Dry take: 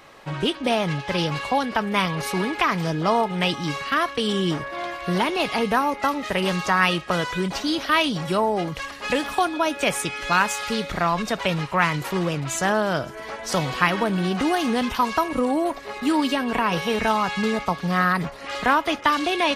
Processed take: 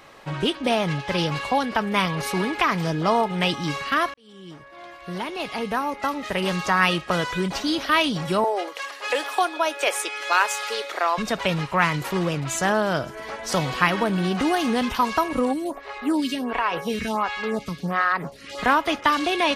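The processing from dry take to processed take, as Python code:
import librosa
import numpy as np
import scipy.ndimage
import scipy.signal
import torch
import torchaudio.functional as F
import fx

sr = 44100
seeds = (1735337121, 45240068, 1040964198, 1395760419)

y = fx.cheby2_highpass(x, sr, hz=190.0, order=4, stop_db=40, at=(8.44, 11.18))
y = fx.stagger_phaser(y, sr, hz=1.4, at=(15.52, 18.57), fade=0.02)
y = fx.edit(y, sr, fx.fade_in_span(start_s=4.14, length_s=2.71), tone=tone)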